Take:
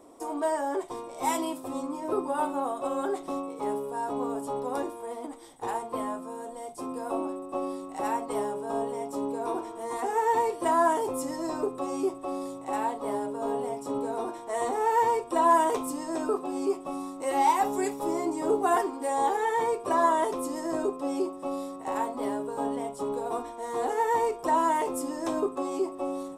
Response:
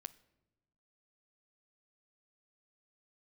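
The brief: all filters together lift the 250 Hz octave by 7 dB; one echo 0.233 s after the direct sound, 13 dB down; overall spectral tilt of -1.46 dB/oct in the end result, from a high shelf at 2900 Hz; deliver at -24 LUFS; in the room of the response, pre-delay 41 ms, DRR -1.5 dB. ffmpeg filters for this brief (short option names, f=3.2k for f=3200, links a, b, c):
-filter_complex "[0:a]equalizer=f=250:t=o:g=8.5,highshelf=f=2.9k:g=-6,aecho=1:1:233:0.224,asplit=2[a][b];[1:a]atrim=start_sample=2205,adelay=41[c];[b][c]afir=irnorm=-1:irlink=0,volume=6.5dB[d];[a][d]amix=inputs=2:normalize=0,volume=-0.5dB"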